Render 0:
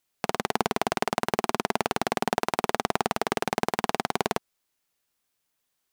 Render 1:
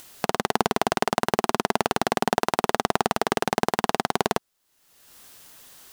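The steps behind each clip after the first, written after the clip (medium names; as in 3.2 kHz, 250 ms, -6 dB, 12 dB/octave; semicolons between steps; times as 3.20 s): peaking EQ 2.3 kHz -4.5 dB 0.23 oct; upward compressor, threshold -31 dBFS; trim +3.5 dB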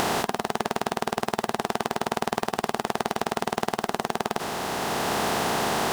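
spectral levelling over time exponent 0.2; peak limiter -6.5 dBFS, peak gain reduction 9.5 dB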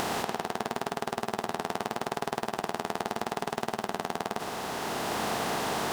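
tape echo 114 ms, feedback 58%, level -6.5 dB, low-pass 5.3 kHz; trim -6 dB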